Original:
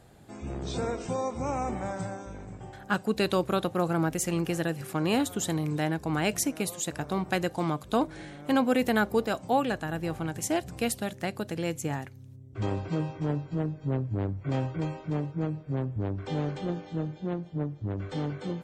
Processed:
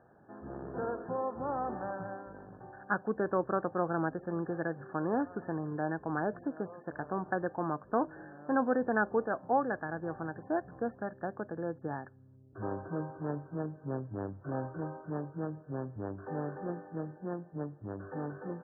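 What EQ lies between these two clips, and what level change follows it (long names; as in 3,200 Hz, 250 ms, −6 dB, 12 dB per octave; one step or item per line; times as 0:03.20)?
high-pass filter 330 Hz 6 dB per octave
linear-phase brick-wall low-pass 1,800 Hz
−2.0 dB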